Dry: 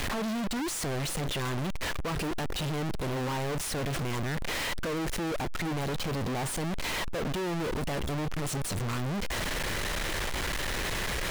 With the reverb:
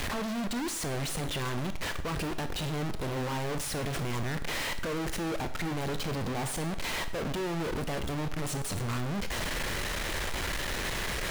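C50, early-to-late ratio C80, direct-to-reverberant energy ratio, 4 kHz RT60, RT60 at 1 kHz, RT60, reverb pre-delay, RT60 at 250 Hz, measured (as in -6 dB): 12.0 dB, 15.0 dB, 9.5 dB, 0.60 s, 0.60 s, 0.65 s, 21 ms, 0.65 s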